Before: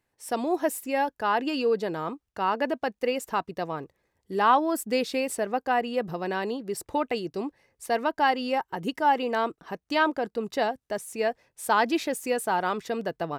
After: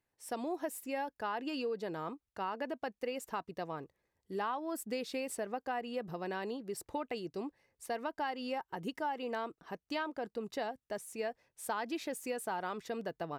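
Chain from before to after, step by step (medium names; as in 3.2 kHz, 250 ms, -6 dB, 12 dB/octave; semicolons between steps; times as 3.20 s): compression 6:1, threshold -25 dBFS, peak gain reduction 10 dB; trim -8 dB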